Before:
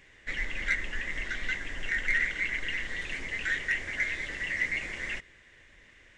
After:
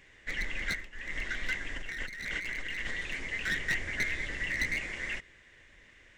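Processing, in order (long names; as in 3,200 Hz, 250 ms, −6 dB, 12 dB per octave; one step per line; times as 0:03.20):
wavefolder on the positive side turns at −25 dBFS
0:00.64–0:01.17: duck −15.5 dB, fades 0.26 s
0:01.76–0:02.91: compressor whose output falls as the input rises −36 dBFS, ratio −1
0:03.49–0:04.81: low-shelf EQ 220 Hz +6 dB
level −1 dB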